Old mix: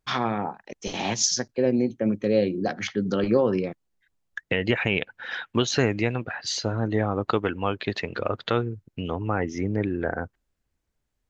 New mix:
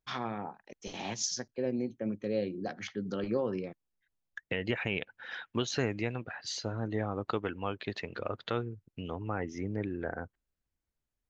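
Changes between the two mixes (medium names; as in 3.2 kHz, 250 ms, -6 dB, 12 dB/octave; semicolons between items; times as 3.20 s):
first voice -10.5 dB; second voice -9.0 dB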